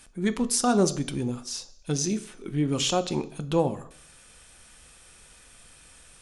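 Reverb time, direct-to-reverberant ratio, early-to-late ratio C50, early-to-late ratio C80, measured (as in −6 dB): 0.60 s, 10.5 dB, 17.0 dB, 20.0 dB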